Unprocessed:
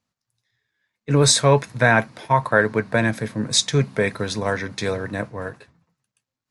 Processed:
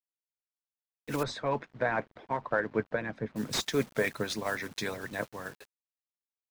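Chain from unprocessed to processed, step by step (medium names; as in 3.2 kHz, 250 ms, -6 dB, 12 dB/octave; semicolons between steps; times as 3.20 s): block-companded coder 5-bit; harmonic-percussive split harmonic -17 dB; bit crusher 8-bit; 1.23–3.36 s: tape spacing loss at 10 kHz 37 dB; slew-rate limiter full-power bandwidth 270 Hz; trim -4.5 dB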